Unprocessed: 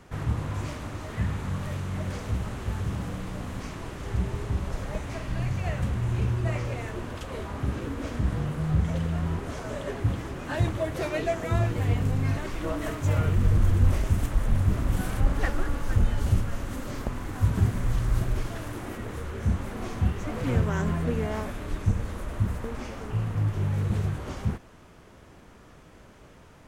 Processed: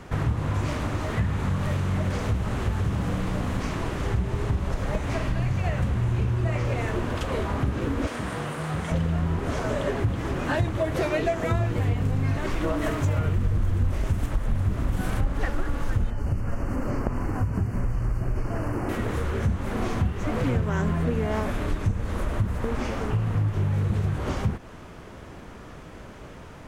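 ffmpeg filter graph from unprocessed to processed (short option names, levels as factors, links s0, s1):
-filter_complex "[0:a]asettb=1/sr,asplit=3[s0][s1][s2];[s0]atrim=end=8.074[s3];[s1]atrim=start=8.07:end=8.92,asetpts=PTS-STARTPTS,afade=t=in:d=0.004:c=qsin,afade=t=out:st=0.846:d=0.004:c=qsin,highpass=f=660:p=1,equalizer=f=9000:t=o:w=0.25:g=8[s4];[s2]atrim=start=8.916[s5];[s3][s4]acrossfade=d=0.004:c1=hsin:c2=qsin[s6];[s6][s5]acrossfade=d=0.004:c1=qsin:c2=hsin,asettb=1/sr,asplit=3[s7][s8][s9];[s7]atrim=end=16.104[s10];[s8]atrim=start=16.1:end=18.89,asetpts=PTS-STARTPTS,afade=t=in:d=0.004:c=qsin,afade=t=out:st=2.786:d=0.004:c=qsin,acrossover=split=1500|3100[s11][s12][s13];[s11]acompressor=threshold=0.0562:ratio=4[s14];[s12]acompressor=threshold=0.001:ratio=4[s15];[s13]acompressor=threshold=0.00112:ratio=4[s16];[s14][s15][s16]amix=inputs=3:normalize=0,asuperstop=centerf=3600:order=20:qfactor=3.1[s17];[s9]atrim=start=18.886[s18];[s10][s17]acrossfade=d=0.004:c1=hsin:c2=qsin[s19];[s19][s18]acrossfade=d=0.004:c1=qsin:c2=hsin,highshelf=f=4900:g=-5.5,acompressor=threshold=0.0282:ratio=4,volume=2.82"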